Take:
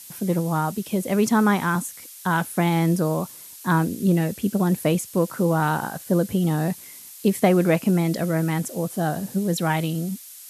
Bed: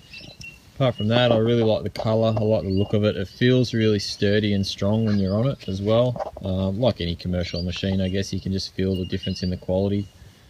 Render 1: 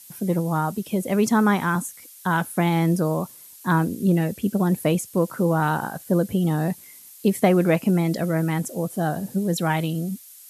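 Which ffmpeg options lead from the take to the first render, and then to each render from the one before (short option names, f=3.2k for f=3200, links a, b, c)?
-af "afftdn=nr=6:nf=-43"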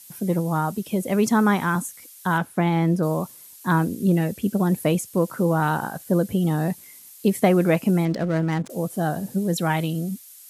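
-filter_complex "[0:a]asettb=1/sr,asplit=3[a][b][c];[a]atrim=end=2.384[d];[b]atrim=start=2.38:end=3.03,asetpts=PTS-STARTPTS,afade=t=in:d=0.004:c=qsin,afade=t=out:st=0.646:d=0.004:c=qsin,lowpass=f=2.8k:p=1[e];[c]atrim=start=3.026[f];[d][e]acrossfade=d=0.004:c1=hsin:c2=qsin[g];[g][f]acrossfade=d=0.004:c1=qsin:c2=hsin,asettb=1/sr,asplit=3[h][i][j];[h]atrim=end=8.054[k];[i]atrim=start=8.05:end=8.7,asetpts=PTS-STARTPTS,afade=t=in:d=0.004:c=qsin,afade=t=out:st=0.646:d=0.004:c=qsin,adynamicsmooth=sensitivity=6.5:basefreq=590[l];[j]atrim=start=8.696[m];[k][l]acrossfade=d=0.004:c1=hsin:c2=qsin[n];[n][m]acrossfade=d=0.004:c1=qsin:c2=hsin"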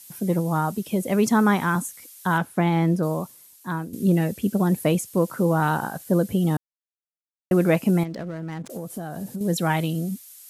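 -filter_complex "[0:a]asettb=1/sr,asplit=3[a][b][c];[a]atrim=end=8.034[d];[b]atrim=start=8.03:end=9.41,asetpts=PTS-STARTPTS,afade=t=in:d=0.004:c=qsin,afade=t=out:st=1.376:d=0.004:c=qsin,acompressor=threshold=-27dB:ratio=12:attack=3.2:release=140:knee=1:detection=peak[e];[c]atrim=start=9.406[f];[d][e]acrossfade=d=0.004:c1=hsin:c2=qsin[g];[g][f]acrossfade=d=0.004:c1=qsin:c2=hsin,asplit=4[h][i][j][k];[h]atrim=end=3.93,asetpts=PTS-STARTPTS,afade=t=out:st=2.83:d=1.1:silence=0.251189[l];[i]atrim=start=3.93:end=6.57,asetpts=PTS-STARTPTS,afade=t=in:d=0.004:c=hsin:silence=0.251189,afade=t=out:st=2.636:d=0.004:c=hsin[m];[j]atrim=start=6.57:end=7.51,asetpts=PTS-STARTPTS,volume=0[n];[k]atrim=start=7.51,asetpts=PTS-STARTPTS,afade=t=in:d=0.004:c=hsin[o];[l][m][n][o]concat=n=4:v=0:a=1"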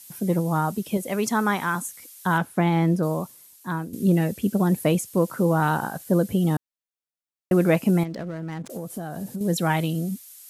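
-filter_complex "[0:a]asettb=1/sr,asplit=3[a][b][c];[a]atrim=end=0.974[d];[b]atrim=start=0.97:end=1.85,asetpts=PTS-STARTPTS,afade=t=in:d=0.004:c=qsin,afade=t=out:st=0.876:d=0.004:c=qsin,lowshelf=f=420:g=-8[e];[c]atrim=start=1.846[f];[d][e]acrossfade=d=0.004:c1=hsin:c2=qsin[g];[g][f]acrossfade=d=0.004:c1=qsin:c2=hsin"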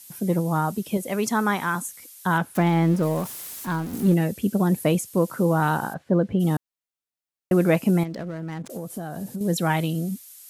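-filter_complex "[0:a]asettb=1/sr,asplit=3[a][b][c];[a]atrim=end=2.554[d];[b]atrim=start=2.55:end=4.14,asetpts=PTS-STARTPTS,afade=t=in:d=0.004:c=qsin,afade=t=out:st=1.586:d=0.004:c=qsin,aeval=exprs='val(0)+0.5*0.0237*sgn(val(0))':c=same[e];[c]atrim=start=4.136[f];[d][e]acrossfade=d=0.004:c1=hsin:c2=qsin[g];[g][f]acrossfade=d=0.004:c1=qsin:c2=hsin,asplit=3[h][i][j];[h]afade=t=out:st=5.93:d=0.02[k];[i]lowpass=2.4k,afade=t=in:st=5.93:d=0.02,afade=t=out:st=6.39:d=0.02[l];[j]afade=t=in:st=6.39:d=0.02[m];[k][l][m]amix=inputs=3:normalize=0"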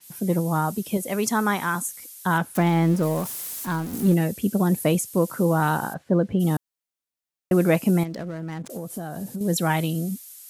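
-af "adynamicequalizer=threshold=0.00562:dfrequency=4900:dqfactor=0.7:tfrequency=4900:tqfactor=0.7:attack=5:release=100:ratio=0.375:range=2:mode=boostabove:tftype=highshelf"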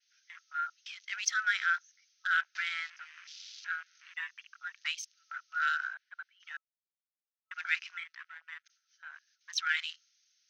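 -af "afftfilt=real='re*between(b*sr/4096,1300,6500)':imag='im*between(b*sr/4096,1300,6500)':win_size=4096:overlap=0.75,afwtdn=0.00501"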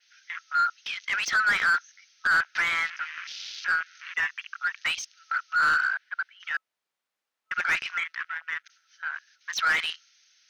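-filter_complex "[0:a]asplit=2[a][b];[b]highpass=f=720:p=1,volume=25dB,asoftclip=type=tanh:threshold=-12dB[c];[a][c]amix=inputs=2:normalize=0,lowpass=f=1.7k:p=1,volume=-6dB"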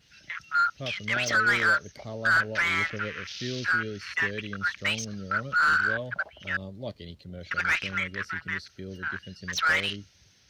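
-filter_complex "[1:a]volume=-16.5dB[a];[0:a][a]amix=inputs=2:normalize=0"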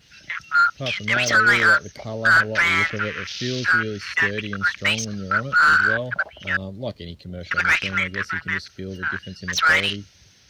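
-af "volume=7dB"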